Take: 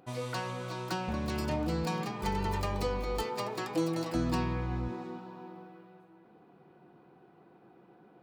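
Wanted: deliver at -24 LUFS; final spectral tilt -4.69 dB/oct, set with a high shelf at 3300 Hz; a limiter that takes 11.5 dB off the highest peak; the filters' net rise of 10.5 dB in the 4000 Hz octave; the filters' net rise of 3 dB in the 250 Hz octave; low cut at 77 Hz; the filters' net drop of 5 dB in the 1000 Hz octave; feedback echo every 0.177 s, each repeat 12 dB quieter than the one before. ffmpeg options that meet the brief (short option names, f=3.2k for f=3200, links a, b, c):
-af "highpass=77,equalizer=f=250:t=o:g=4.5,equalizer=f=1k:t=o:g=-7.5,highshelf=f=3.3k:g=8.5,equalizer=f=4k:t=o:g=7,alimiter=level_in=3.5dB:limit=-24dB:level=0:latency=1,volume=-3.5dB,aecho=1:1:177|354|531:0.251|0.0628|0.0157,volume=12dB"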